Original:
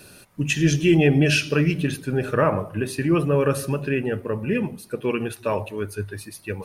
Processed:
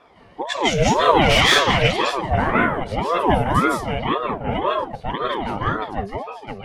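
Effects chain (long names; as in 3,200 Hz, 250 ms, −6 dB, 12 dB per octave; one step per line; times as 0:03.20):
low-pass that shuts in the quiet parts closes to 1,800 Hz, open at −14.5 dBFS
0:01.13–0:02.02: mid-hump overdrive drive 18 dB, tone 3,600 Hz, clips at −6.5 dBFS
convolution reverb, pre-delay 148 ms, DRR −4 dB
ring modulator whose carrier an LFO sweeps 580 Hz, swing 50%, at 1.9 Hz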